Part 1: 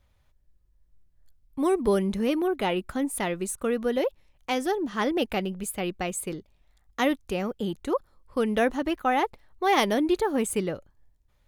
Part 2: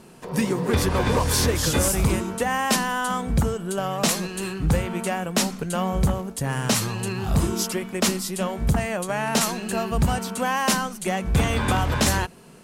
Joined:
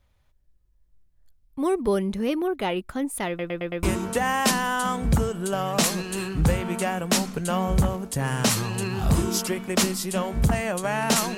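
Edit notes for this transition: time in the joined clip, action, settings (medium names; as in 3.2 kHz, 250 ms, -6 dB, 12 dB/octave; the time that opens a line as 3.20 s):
part 1
3.28 s: stutter in place 0.11 s, 5 plays
3.83 s: go over to part 2 from 2.08 s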